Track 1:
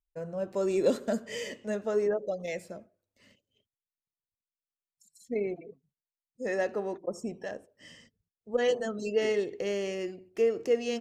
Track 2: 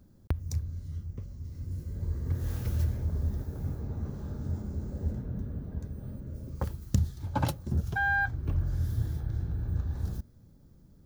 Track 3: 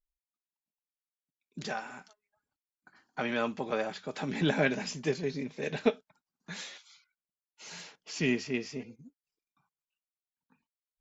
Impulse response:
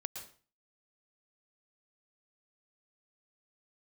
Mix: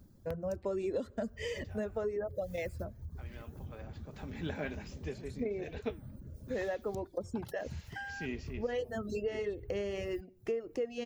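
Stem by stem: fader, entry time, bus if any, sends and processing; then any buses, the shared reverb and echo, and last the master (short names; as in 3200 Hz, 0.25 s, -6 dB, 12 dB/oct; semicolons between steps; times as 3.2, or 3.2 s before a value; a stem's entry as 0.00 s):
+2.5 dB, 0.10 s, bus A, no send, high shelf 3800 Hz -6 dB
0.0 dB, 0.00 s, bus A, no send, high shelf 5400 Hz +8.5 dB; compressor 3:1, threshold -44 dBFS, peak gain reduction 18 dB
3.6 s -17.5 dB -> 4.29 s -6.5 dB -> 8.49 s -6.5 dB -> 8.77 s -16.5 dB, 0.00 s, no bus, no send, de-esser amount 95%; flange 1.9 Hz, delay 3.1 ms, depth 9.5 ms, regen +89%
bus A: 0.0 dB, reverb removal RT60 0.78 s; compressor 5:1, threshold -33 dBFS, peak gain reduction 14 dB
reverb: off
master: high shelf 5100 Hz -5.5 dB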